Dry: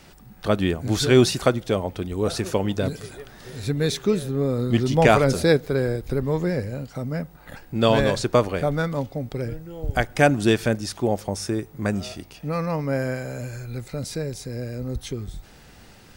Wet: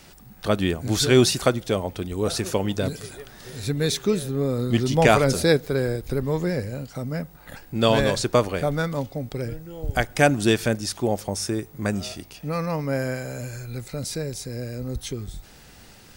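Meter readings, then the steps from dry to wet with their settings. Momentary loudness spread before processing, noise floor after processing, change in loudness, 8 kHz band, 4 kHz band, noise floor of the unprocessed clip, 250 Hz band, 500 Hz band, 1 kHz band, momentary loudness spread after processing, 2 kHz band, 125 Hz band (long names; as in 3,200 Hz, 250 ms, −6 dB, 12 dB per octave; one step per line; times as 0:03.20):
15 LU, −49 dBFS, −0.5 dB, +4.0 dB, +2.0 dB, −49 dBFS, −1.0 dB, −1.0 dB, −0.5 dB, 15 LU, 0.0 dB, −1.0 dB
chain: high-shelf EQ 3,800 Hz +6 dB
level −1 dB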